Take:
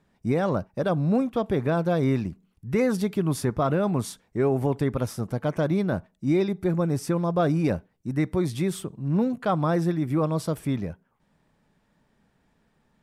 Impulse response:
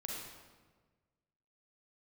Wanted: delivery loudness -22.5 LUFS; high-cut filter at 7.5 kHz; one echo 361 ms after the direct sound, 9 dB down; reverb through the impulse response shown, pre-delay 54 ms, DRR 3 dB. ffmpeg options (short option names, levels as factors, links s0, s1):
-filter_complex "[0:a]lowpass=7500,aecho=1:1:361:0.355,asplit=2[s0][s1];[1:a]atrim=start_sample=2205,adelay=54[s2];[s1][s2]afir=irnorm=-1:irlink=0,volume=0.75[s3];[s0][s3]amix=inputs=2:normalize=0,volume=1.06"